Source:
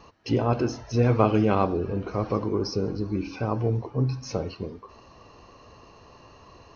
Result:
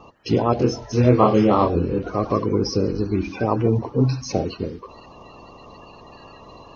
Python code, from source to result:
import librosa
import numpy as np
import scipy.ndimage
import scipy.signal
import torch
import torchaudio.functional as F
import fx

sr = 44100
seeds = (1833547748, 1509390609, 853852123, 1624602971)

y = fx.spec_quant(x, sr, step_db=30)
y = fx.rider(y, sr, range_db=3, speed_s=2.0)
y = fx.doubler(y, sr, ms=24.0, db=-2.5, at=(0.57, 1.99))
y = y * librosa.db_to_amplitude(4.5)